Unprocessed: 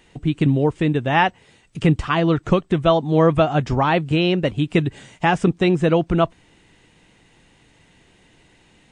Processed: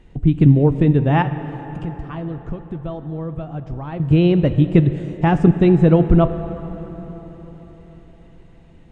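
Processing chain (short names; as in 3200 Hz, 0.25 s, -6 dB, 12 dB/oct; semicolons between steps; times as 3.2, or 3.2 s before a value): tilt -3.5 dB/oct; 1.22–4 compressor 3:1, threshold -29 dBFS, peak gain reduction 19 dB; plate-style reverb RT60 4.7 s, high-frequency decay 0.6×, DRR 10 dB; gain -2.5 dB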